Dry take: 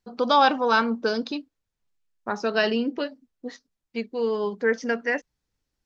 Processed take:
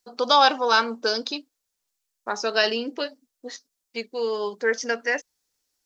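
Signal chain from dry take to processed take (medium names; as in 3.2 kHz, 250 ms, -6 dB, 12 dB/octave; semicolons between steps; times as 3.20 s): tone controls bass -15 dB, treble +12 dB; trim +1 dB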